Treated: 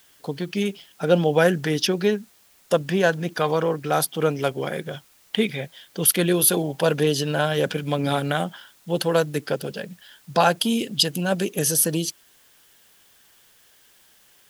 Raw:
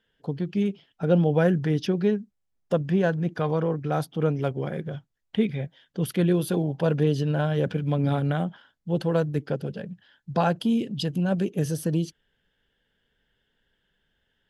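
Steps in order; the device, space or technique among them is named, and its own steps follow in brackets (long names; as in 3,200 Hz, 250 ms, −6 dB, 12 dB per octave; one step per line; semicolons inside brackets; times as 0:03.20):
turntable without a phono preamp (RIAA equalisation recording; white noise bed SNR 33 dB)
level +7 dB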